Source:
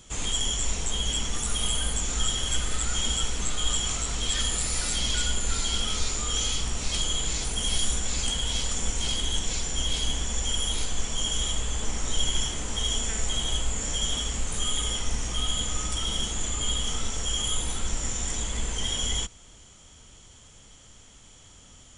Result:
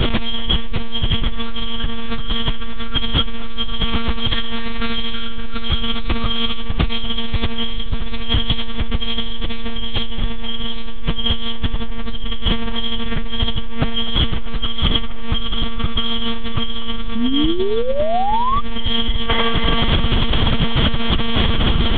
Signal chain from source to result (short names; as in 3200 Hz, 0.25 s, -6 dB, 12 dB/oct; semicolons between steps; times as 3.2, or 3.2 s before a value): low shelf 210 Hz +7.5 dB; monotone LPC vocoder at 8 kHz 230 Hz; band-limited delay 0.246 s, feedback 46%, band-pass 980 Hz, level -7.5 dB; painted sound rise, 17.15–18.61, 220–1200 Hz -27 dBFS; fast leveller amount 100%; gain -1.5 dB